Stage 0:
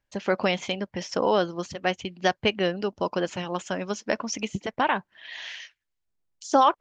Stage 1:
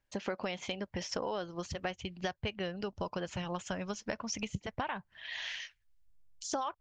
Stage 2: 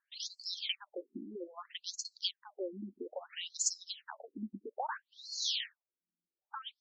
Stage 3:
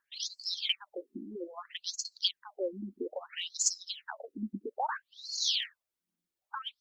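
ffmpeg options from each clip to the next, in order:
ffmpeg -i in.wav -af "asubboost=boost=9:cutoff=100,acompressor=threshold=-32dB:ratio=6,volume=-1.5dB" out.wav
ffmpeg -i in.wav -af "aexciter=amount=6.1:drive=4.3:freq=3400,afftfilt=real='re*between(b*sr/1024,250*pow(6000/250,0.5+0.5*sin(2*PI*0.61*pts/sr))/1.41,250*pow(6000/250,0.5+0.5*sin(2*PI*0.61*pts/sr))*1.41)':imag='im*between(b*sr/1024,250*pow(6000/250,0.5+0.5*sin(2*PI*0.61*pts/sr))/1.41,250*pow(6000/250,0.5+0.5*sin(2*PI*0.61*pts/sr))*1.41)':win_size=1024:overlap=0.75,volume=1.5dB" out.wav
ffmpeg -i in.wav -af "aphaser=in_gain=1:out_gain=1:delay=2:decay=0.33:speed=1.3:type=triangular,volume=4dB" out.wav

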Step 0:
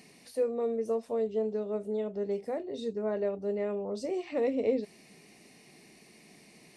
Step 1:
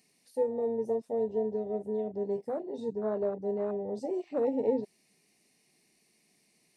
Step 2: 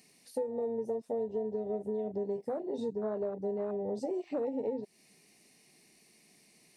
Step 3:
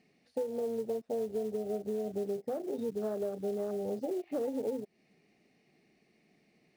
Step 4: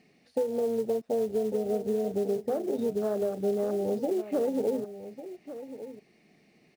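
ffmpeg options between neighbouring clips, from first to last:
ffmpeg -i in.wav -af "afwtdn=0.02,highshelf=frequency=4200:gain=10.5" out.wav
ffmpeg -i in.wav -af "acompressor=threshold=-38dB:ratio=6,volume=6dB" out.wav
ffmpeg -i in.wav -af "bandreject=frequency=980:width=5.2,adynamicsmooth=sensitivity=2:basefreq=2500,acrusher=bits=6:mode=log:mix=0:aa=0.000001" out.wav
ffmpeg -i in.wav -af "aecho=1:1:1149:0.224,volume=6dB" out.wav

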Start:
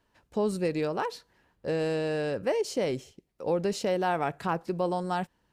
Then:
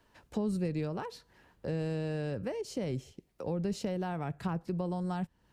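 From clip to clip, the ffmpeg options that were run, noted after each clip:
ffmpeg -i in.wav -filter_complex "[0:a]acrossover=split=200[link_01][link_02];[link_02]acompressor=threshold=-46dB:ratio=3[link_03];[link_01][link_03]amix=inputs=2:normalize=0,volume=4.5dB" out.wav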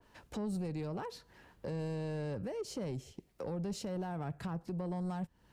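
ffmpeg -i in.wav -filter_complex "[0:a]acrossover=split=4300[link_01][link_02];[link_01]alimiter=level_in=6.5dB:limit=-24dB:level=0:latency=1:release=251,volume=-6.5dB[link_03];[link_03][link_02]amix=inputs=2:normalize=0,asoftclip=type=tanh:threshold=-33.5dB,adynamicequalizer=threshold=0.00141:dfrequency=1800:dqfactor=0.7:tfrequency=1800:tqfactor=0.7:attack=5:release=100:ratio=0.375:range=1.5:mode=cutabove:tftype=highshelf,volume=2.5dB" out.wav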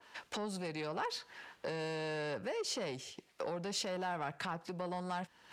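ffmpeg -i in.wav -af "areverse,acompressor=mode=upward:threshold=-58dB:ratio=2.5,areverse,bandpass=frequency=2700:width_type=q:width=0.54:csg=0,asoftclip=type=tanh:threshold=-34.5dB,volume=11.5dB" out.wav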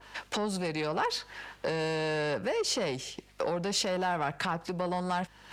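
ffmpeg -i in.wav -af "aeval=exprs='val(0)+0.000355*(sin(2*PI*50*n/s)+sin(2*PI*2*50*n/s)/2+sin(2*PI*3*50*n/s)/3+sin(2*PI*4*50*n/s)/4+sin(2*PI*5*50*n/s)/5)':channel_layout=same,volume=8dB" out.wav

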